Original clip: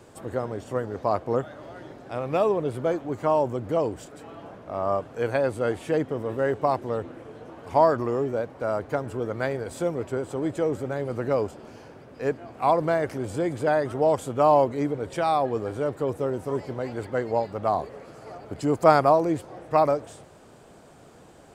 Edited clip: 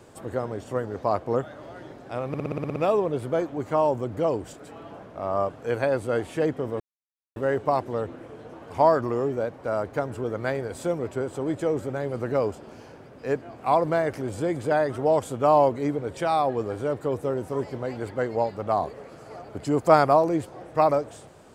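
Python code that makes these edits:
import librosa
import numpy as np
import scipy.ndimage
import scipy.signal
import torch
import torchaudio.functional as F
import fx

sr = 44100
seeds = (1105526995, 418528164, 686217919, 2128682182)

y = fx.edit(x, sr, fx.stutter(start_s=2.28, slice_s=0.06, count=9),
    fx.insert_silence(at_s=6.32, length_s=0.56), tone=tone)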